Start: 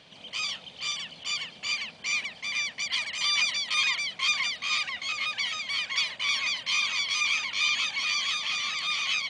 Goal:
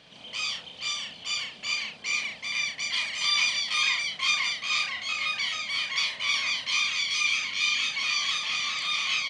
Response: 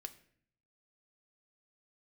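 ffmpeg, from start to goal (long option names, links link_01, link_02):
-filter_complex "[0:a]asettb=1/sr,asplit=3[link_01][link_02][link_03];[link_01]atrim=end=6.824[link_04];[link_02]atrim=start=6.82:end=7.96,asetpts=PTS-STARTPTS,afade=type=in:duration=0.004:curve=qsin,afade=type=out:start_time=1.136:duration=0.004:curve=qsin,equalizer=frequency=890:width_type=o:width=0.92:gain=-6.5[link_05];[link_03]atrim=start=7.956[link_06];[link_04][link_05]acrossfade=duration=0.004:curve1=hsin:curve2=qsin[link_07];[link_07][link_06]acrossfade=duration=0.004:curve1=qsin:curve2=hsin,aecho=1:1:34|66:0.668|0.335,volume=-1dB"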